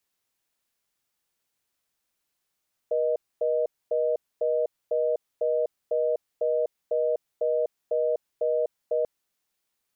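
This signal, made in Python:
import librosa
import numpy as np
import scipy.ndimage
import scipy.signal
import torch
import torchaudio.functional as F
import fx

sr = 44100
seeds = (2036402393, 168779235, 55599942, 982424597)

y = fx.call_progress(sr, length_s=6.14, kind='reorder tone', level_db=-24.5)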